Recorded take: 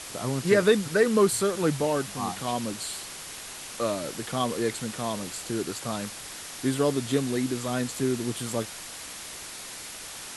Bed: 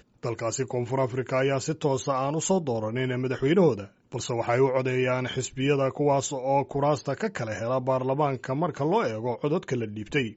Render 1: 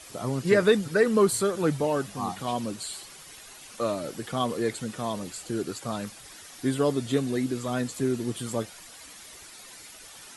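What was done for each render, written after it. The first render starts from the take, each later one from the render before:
broadband denoise 10 dB, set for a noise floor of −40 dBFS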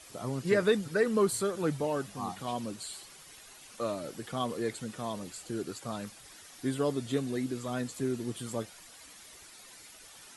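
level −5.5 dB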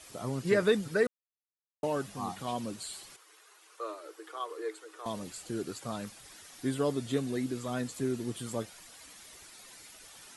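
0:01.07–0:01.83: silence
0:03.16–0:05.06: Chebyshev high-pass with heavy ripple 310 Hz, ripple 9 dB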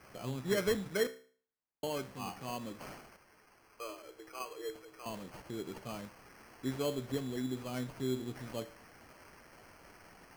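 tuned comb filter 64 Hz, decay 0.45 s, harmonics all, mix 60%
decimation without filtering 12×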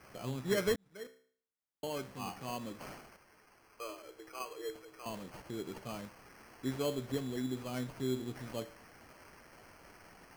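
0:00.76–0:02.20: fade in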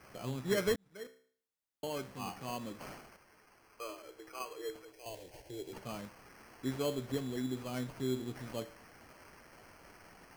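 0:04.92–0:05.73: phaser with its sweep stopped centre 510 Hz, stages 4

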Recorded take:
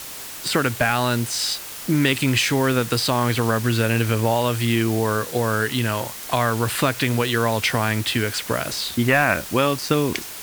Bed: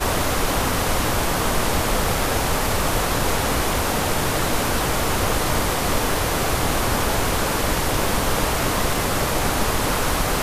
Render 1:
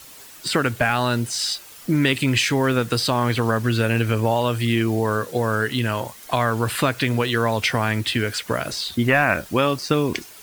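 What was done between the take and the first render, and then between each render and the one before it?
broadband denoise 10 dB, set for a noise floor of −35 dBFS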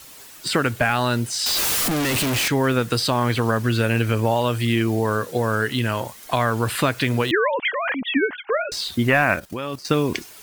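0:01.46–0:02.48: sign of each sample alone
0:07.31–0:08.72: three sine waves on the formant tracks
0:09.35–0:09.85: output level in coarse steps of 14 dB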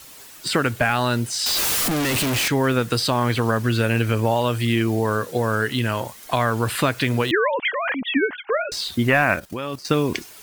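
no processing that can be heard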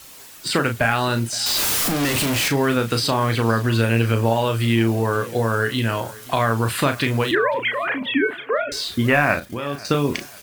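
double-tracking delay 35 ms −7.5 dB
repeating echo 520 ms, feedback 49%, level −21.5 dB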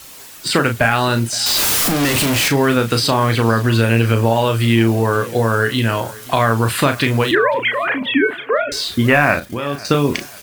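level +4.5 dB
brickwall limiter −2 dBFS, peak gain reduction 1.5 dB

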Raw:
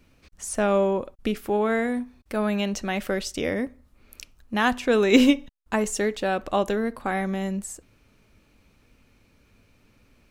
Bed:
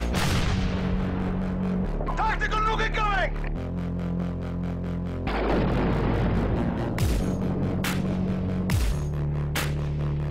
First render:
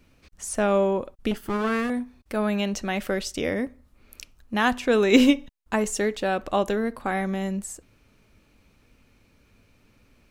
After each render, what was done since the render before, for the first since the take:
0:01.31–0:01.90: lower of the sound and its delayed copy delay 0.63 ms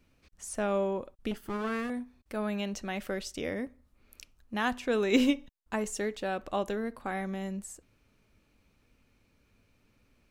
level −8 dB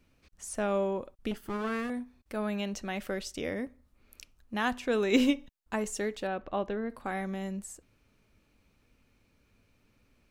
0:06.27–0:06.90: high-frequency loss of the air 250 metres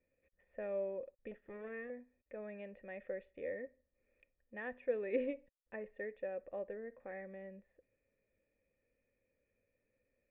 formant resonators in series e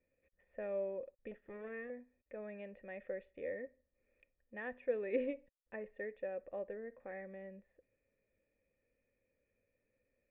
no processing that can be heard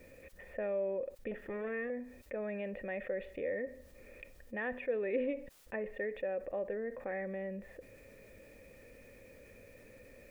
envelope flattener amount 50%

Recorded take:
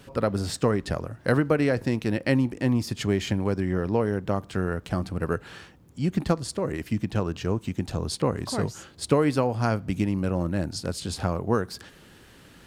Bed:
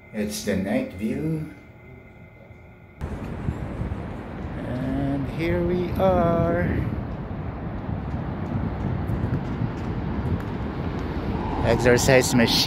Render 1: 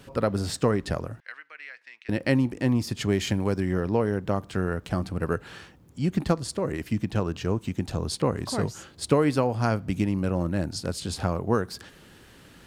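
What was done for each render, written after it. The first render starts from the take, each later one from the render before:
0:01.20–0:02.09: four-pole ladder band-pass 2,400 Hz, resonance 45%
0:03.12–0:03.80: high-shelf EQ 4,500 Hz +5.5 dB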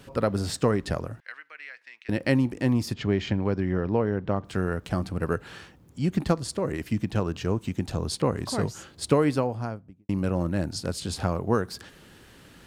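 0:02.94–0:04.45: high-frequency loss of the air 190 metres
0:09.16–0:10.09: fade out and dull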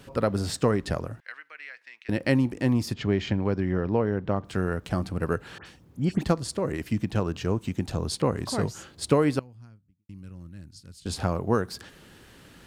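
0:05.58–0:06.23: all-pass dispersion highs, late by 78 ms, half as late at 2,500 Hz
0:09.39–0:11.06: guitar amp tone stack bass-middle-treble 6-0-2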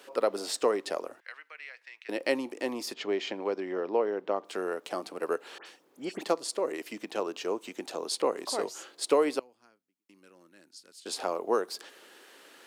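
high-pass filter 360 Hz 24 dB per octave
dynamic equaliser 1,600 Hz, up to −6 dB, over −50 dBFS, Q 2.5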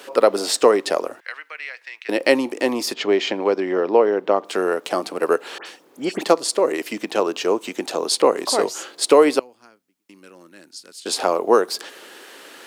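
level +12 dB
brickwall limiter −1 dBFS, peak gain reduction 2 dB

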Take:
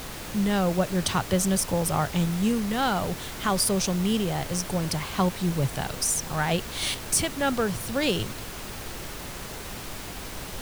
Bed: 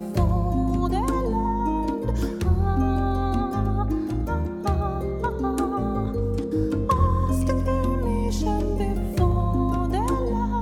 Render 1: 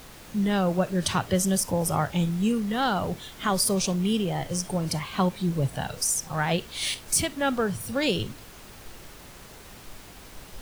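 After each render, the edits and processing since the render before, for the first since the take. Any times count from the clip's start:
noise reduction from a noise print 9 dB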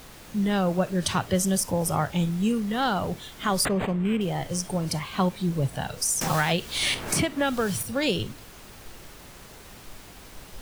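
0:03.65–0:04.21: linearly interpolated sample-rate reduction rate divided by 8×
0:06.21–0:07.83: multiband upward and downward compressor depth 100%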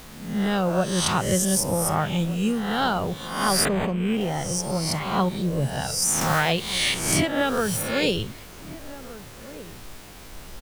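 peak hold with a rise ahead of every peak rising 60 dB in 0.70 s
slap from a distant wall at 260 metres, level −16 dB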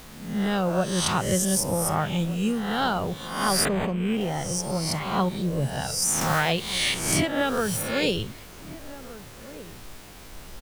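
level −1.5 dB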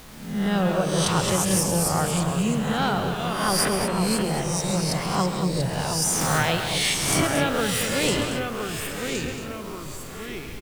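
delay with pitch and tempo change per echo 86 ms, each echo −2 semitones, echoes 2, each echo −6 dB
loudspeakers that aren't time-aligned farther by 46 metres −11 dB, 78 metres −9 dB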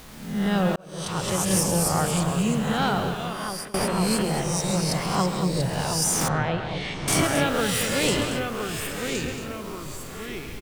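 0:00.76–0:01.57: fade in
0:03.01–0:03.74: fade out, to −23 dB
0:06.28–0:07.08: head-to-tape spacing loss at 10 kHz 33 dB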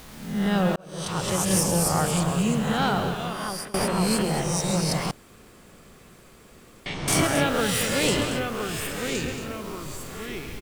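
0:05.11–0:06.86: fill with room tone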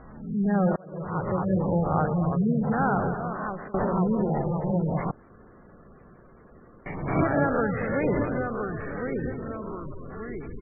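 low-pass filter 1,900 Hz 24 dB per octave
gate on every frequency bin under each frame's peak −20 dB strong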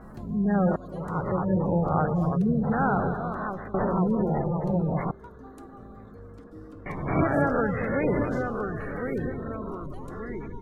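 mix in bed −21.5 dB

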